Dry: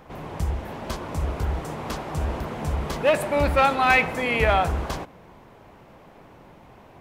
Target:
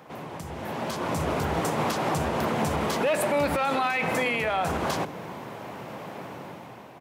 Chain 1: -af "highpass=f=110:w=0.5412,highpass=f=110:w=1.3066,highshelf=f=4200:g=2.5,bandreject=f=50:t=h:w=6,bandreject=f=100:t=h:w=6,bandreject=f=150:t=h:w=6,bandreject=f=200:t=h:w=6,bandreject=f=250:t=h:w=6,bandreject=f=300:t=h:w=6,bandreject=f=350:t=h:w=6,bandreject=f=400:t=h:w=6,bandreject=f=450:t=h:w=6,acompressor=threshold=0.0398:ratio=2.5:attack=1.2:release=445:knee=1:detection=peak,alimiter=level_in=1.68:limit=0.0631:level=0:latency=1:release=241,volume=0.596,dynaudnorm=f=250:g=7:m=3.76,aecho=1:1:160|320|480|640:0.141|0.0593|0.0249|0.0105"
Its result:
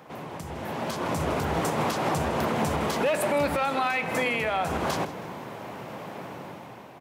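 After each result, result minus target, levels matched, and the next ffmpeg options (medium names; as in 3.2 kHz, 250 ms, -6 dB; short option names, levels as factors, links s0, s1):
compression: peak gain reduction +13 dB; echo-to-direct +8.5 dB
-af "highpass=f=110:w=0.5412,highpass=f=110:w=1.3066,highshelf=f=4200:g=2.5,bandreject=f=50:t=h:w=6,bandreject=f=100:t=h:w=6,bandreject=f=150:t=h:w=6,bandreject=f=200:t=h:w=6,bandreject=f=250:t=h:w=6,bandreject=f=300:t=h:w=6,bandreject=f=350:t=h:w=6,bandreject=f=400:t=h:w=6,bandreject=f=450:t=h:w=6,alimiter=level_in=1.68:limit=0.0631:level=0:latency=1:release=241,volume=0.596,dynaudnorm=f=250:g=7:m=3.76,aecho=1:1:160|320|480|640:0.141|0.0593|0.0249|0.0105"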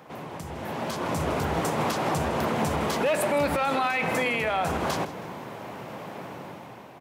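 echo-to-direct +8.5 dB
-af "highpass=f=110:w=0.5412,highpass=f=110:w=1.3066,highshelf=f=4200:g=2.5,bandreject=f=50:t=h:w=6,bandreject=f=100:t=h:w=6,bandreject=f=150:t=h:w=6,bandreject=f=200:t=h:w=6,bandreject=f=250:t=h:w=6,bandreject=f=300:t=h:w=6,bandreject=f=350:t=h:w=6,bandreject=f=400:t=h:w=6,bandreject=f=450:t=h:w=6,alimiter=level_in=1.68:limit=0.0631:level=0:latency=1:release=241,volume=0.596,dynaudnorm=f=250:g=7:m=3.76,aecho=1:1:160|320:0.0531|0.0223"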